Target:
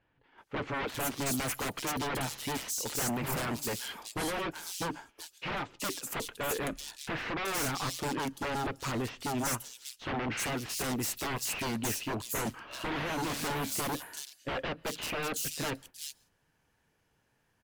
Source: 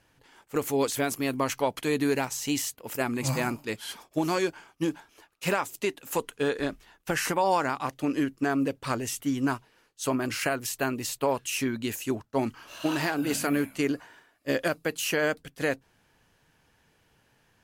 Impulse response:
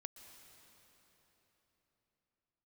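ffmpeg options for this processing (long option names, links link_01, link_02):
-filter_complex "[0:a]aeval=exprs='0.0316*(abs(mod(val(0)/0.0316+3,4)-2)-1)':channel_layout=same,agate=range=-10dB:threshold=-55dB:ratio=16:detection=peak,acrossover=split=3500[link_01][link_02];[link_02]adelay=380[link_03];[link_01][link_03]amix=inputs=2:normalize=0,asplit=2[link_04][link_05];[1:a]atrim=start_sample=2205,afade=type=out:start_time=0.2:duration=0.01,atrim=end_sample=9261[link_06];[link_05][link_06]afir=irnorm=-1:irlink=0,volume=-5dB[link_07];[link_04][link_07]amix=inputs=2:normalize=0"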